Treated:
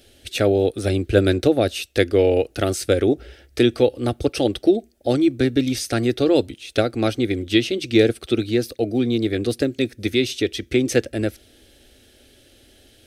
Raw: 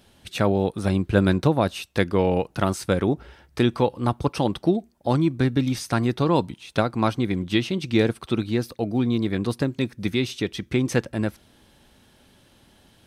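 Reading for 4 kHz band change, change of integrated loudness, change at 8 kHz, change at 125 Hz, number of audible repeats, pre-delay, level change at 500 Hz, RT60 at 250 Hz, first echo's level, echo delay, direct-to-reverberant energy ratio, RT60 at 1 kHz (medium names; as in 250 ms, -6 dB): +5.5 dB, +3.0 dB, +6.5 dB, -1.5 dB, no echo, no reverb, +6.0 dB, no reverb, no echo, no echo, no reverb, no reverb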